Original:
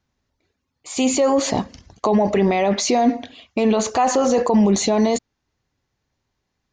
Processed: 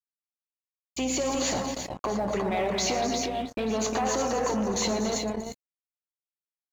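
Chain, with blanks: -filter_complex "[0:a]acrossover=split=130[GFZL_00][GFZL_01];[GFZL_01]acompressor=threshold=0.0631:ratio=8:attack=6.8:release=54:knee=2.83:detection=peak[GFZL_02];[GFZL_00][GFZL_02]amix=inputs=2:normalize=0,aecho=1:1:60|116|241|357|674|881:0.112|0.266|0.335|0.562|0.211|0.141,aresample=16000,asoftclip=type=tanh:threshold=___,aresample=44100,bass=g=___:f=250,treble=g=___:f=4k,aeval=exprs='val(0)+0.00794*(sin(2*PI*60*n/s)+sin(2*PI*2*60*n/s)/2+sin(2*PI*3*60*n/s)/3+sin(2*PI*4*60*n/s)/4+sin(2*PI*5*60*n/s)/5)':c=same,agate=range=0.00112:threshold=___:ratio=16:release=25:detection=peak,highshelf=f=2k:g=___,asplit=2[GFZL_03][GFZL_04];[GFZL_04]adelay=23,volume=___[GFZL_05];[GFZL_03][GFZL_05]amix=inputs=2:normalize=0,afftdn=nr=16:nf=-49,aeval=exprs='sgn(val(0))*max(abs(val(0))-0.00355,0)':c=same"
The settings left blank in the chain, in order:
0.1, -6, -3, 0.0178, 3, 0.211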